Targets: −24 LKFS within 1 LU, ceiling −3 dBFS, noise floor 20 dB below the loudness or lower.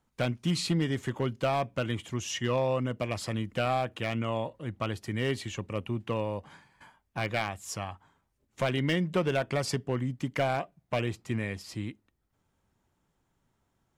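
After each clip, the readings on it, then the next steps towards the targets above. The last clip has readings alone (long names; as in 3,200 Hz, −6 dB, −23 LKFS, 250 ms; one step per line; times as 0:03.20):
share of clipped samples 0.5%; peaks flattened at −19.5 dBFS; integrated loudness −31.5 LKFS; sample peak −19.5 dBFS; target loudness −24.0 LKFS
→ clipped peaks rebuilt −19.5 dBFS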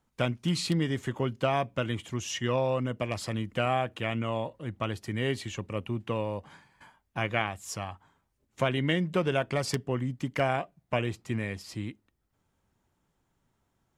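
share of clipped samples 0.0%; integrated loudness −31.0 LKFS; sample peak −10.5 dBFS; target loudness −24.0 LKFS
→ level +7 dB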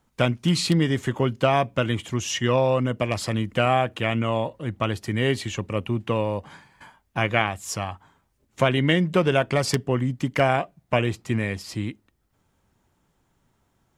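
integrated loudness −24.0 LKFS; sample peak −3.5 dBFS; background noise floor −70 dBFS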